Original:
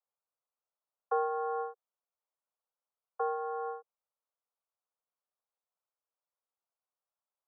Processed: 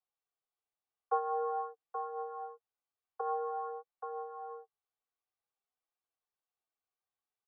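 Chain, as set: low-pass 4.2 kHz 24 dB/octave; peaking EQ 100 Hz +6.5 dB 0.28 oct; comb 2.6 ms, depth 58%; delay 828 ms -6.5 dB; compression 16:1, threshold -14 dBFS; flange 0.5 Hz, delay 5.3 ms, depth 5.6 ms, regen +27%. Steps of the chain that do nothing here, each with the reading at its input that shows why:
low-pass 4.2 kHz: input has nothing above 1.4 kHz; peaking EQ 100 Hz: input has nothing below 430 Hz; compression, threshold -14 dBFS: peak at its input -17.5 dBFS

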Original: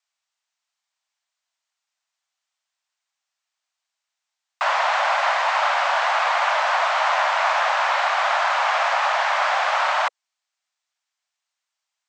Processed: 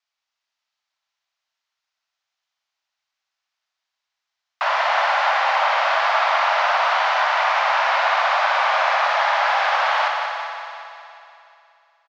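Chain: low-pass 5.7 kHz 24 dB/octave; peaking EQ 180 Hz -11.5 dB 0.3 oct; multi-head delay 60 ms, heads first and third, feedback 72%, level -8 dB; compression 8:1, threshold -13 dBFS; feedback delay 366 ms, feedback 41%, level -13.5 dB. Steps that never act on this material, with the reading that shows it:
peaking EQ 180 Hz: input has nothing below 450 Hz

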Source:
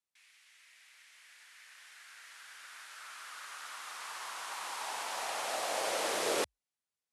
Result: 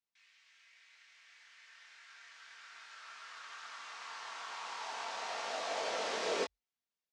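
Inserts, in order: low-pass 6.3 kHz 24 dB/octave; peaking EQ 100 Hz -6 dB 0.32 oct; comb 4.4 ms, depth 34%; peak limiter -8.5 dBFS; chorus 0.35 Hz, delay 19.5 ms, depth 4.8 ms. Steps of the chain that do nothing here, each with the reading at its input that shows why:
peak limiter -8.5 dBFS: peak at its input -19.5 dBFS

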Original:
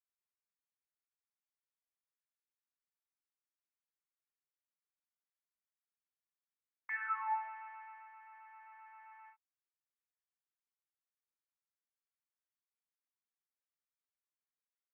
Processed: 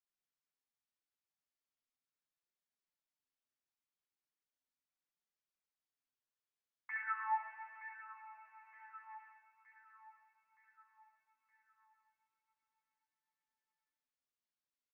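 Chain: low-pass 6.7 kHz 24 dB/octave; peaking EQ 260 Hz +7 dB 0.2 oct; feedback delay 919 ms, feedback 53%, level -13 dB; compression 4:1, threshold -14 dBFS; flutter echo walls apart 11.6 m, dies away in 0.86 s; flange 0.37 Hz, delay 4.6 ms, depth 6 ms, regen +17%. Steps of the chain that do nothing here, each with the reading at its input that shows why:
low-pass 6.7 kHz: input has nothing above 2.3 kHz; peaking EQ 260 Hz: input has nothing below 850 Hz; compression, threshold -14 dBFS: peak at its input -27.0 dBFS

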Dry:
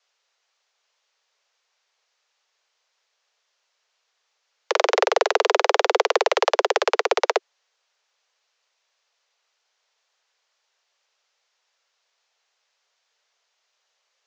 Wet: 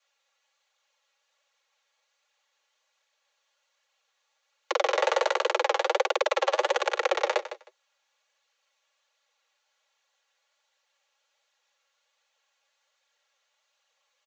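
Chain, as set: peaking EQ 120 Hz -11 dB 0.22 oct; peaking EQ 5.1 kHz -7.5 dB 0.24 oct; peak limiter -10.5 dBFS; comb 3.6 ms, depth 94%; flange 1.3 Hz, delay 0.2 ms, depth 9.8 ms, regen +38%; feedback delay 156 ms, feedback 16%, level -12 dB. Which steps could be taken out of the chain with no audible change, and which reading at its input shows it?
peaking EQ 120 Hz: input has nothing below 320 Hz

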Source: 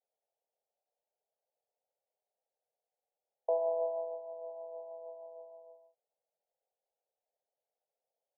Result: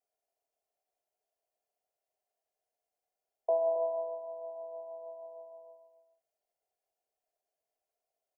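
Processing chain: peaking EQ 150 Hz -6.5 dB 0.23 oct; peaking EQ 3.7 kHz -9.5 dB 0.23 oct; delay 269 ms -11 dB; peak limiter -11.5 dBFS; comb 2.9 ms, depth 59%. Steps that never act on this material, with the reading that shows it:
peaking EQ 150 Hz: input has nothing below 450 Hz; peaking EQ 3.7 kHz: input has nothing above 1 kHz; peak limiter -11.5 dBFS: peak at its input -22.0 dBFS

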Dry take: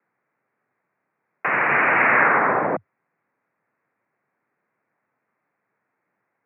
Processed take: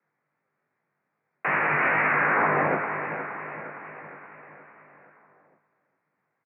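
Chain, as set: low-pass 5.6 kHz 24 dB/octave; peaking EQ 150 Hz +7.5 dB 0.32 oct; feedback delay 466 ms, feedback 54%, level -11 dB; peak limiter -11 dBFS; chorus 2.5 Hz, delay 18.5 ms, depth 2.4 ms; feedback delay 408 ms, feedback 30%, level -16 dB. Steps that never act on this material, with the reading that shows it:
low-pass 5.6 kHz: input has nothing above 2.9 kHz

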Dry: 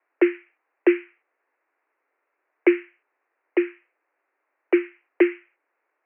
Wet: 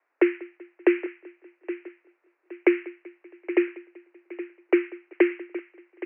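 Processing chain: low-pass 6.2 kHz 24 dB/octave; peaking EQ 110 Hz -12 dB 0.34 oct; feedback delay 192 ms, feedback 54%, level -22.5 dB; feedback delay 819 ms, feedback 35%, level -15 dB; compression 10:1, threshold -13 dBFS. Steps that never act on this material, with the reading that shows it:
low-pass 6.2 kHz: input has nothing above 2.4 kHz; peaking EQ 110 Hz: input has nothing below 290 Hz

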